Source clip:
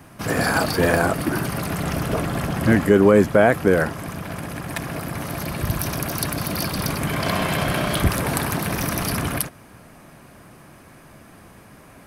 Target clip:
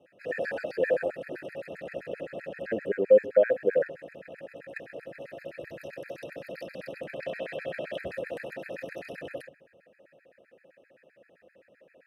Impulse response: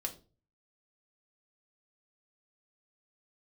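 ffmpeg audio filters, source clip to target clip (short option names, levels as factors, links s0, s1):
-filter_complex "[0:a]asplit=3[s0][s1][s2];[s0]bandpass=f=530:t=q:w=8,volume=1[s3];[s1]bandpass=f=1840:t=q:w=8,volume=0.501[s4];[s2]bandpass=f=2480:t=q:w=8,volume=0.355[s5];[s3][s4][s5]amix=inputs=3:normalize=0,bandreject=f=137.2:t=h:w=4,bandreject=f=274.4:t=h:w=4,asplit=2[s6][s7];[1:a]atrim=start_sample=2205,asetrate=23814,aresample=44100,lowpass=2500[s8];[s7][s8]afir=irnorm=-1:irlink=0,volume=0.335[s9];[s6][s9]amix=inputs=2:normalize=0,afftfilt=real='re*gt(sin(2*PI*7.7*pts/sr)*(1-2*mod(floor(b*sr/1024/1300),2)),0)':imag='im*gt(sin(2*PI*7.7*pts/sr)*(1-2*mod(floor(b*sr/1024/1300),2)),0)':win_size=1024:overlap=0.75"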